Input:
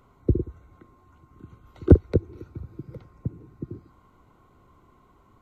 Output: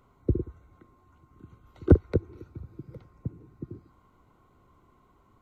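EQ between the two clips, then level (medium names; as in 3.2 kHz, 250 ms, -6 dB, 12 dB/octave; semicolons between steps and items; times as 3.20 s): dynamic bell 1.4 kHz, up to +5 dB, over -44 dBFS, Q 0.82; -4.0 dB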